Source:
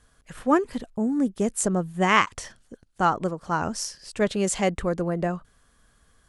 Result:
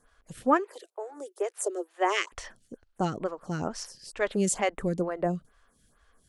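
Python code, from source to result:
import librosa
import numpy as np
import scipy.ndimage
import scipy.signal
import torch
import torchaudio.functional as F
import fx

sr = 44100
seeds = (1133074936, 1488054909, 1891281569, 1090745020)

y = fx.steep_highpass(x, sr, hz=340.0, slope=96, at=(0.57, 2.31), fade=0.02)
y = fx.stagger_phaser(y, sr, hz=2.2)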